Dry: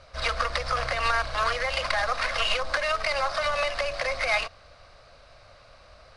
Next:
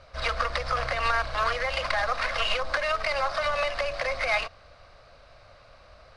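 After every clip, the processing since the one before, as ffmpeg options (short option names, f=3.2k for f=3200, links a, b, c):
-af "highshelf=f=5.5k:g=-7.5"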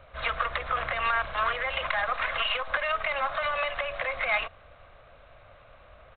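-filter_complex "[0:a]acrossover=split=680[a][b];[a]asoftclip=type=tanh:threshold=-37.5dB[c];[c][b]amix=inputs=2:normalize=0,aresample=8000,aresample=44100"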